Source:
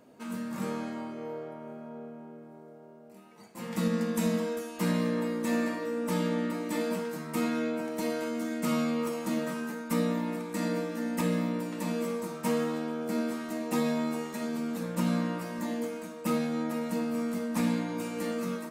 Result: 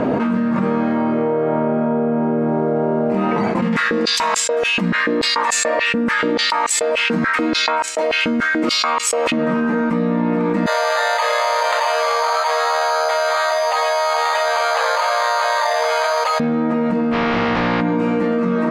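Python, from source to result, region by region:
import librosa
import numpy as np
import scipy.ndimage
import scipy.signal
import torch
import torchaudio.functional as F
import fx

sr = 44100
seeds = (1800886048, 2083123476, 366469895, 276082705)

y = fx.chain(x, sr, fx.high_shelf(hz=2100.0, db=11.5),
    fx.filter_held_highpass(hz=6.9, low_hz=200.0, high_hz=7600.0), at=(3.62, 9.32))
y = fx.chain(y, sr, fx.steep_highpass(hz=600.0, slope=48),
    fx.resample_bad(factor=8, down='filtered', up='zero_stuff'), at=(10.66, 16.4))
y = fx.spec_flatten(y, sr, power=0.29, at=(17.11, 17.8), fade=0.02)
y = fx.lowpass(y, sr, hz=5000.0, slope=24, at=(17.11, 17.8), fade=0.02)
y = fx.doubler(y, sr, ms=17.0, db=-4.0, at=(17.11, 17.8), fade=0.02)
y = scipy.signal.sosfilt(scipy.signal.butter(2, 1900.0, 'lowpass', fs=sr, output='sos'), y)
y = fx.env_flatten(y, sr, amount_pct=100)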